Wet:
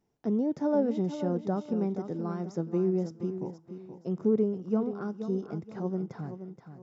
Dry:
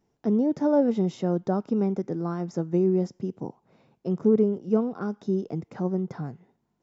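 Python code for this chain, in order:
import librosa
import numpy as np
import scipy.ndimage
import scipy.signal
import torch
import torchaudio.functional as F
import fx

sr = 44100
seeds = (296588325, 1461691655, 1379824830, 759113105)

y = fx.echo_feedback(x, sr, ms=476, feedback_pct=31, wet_db=-10.0)
y = y * 10.0 ** (-5.0 / 20.0)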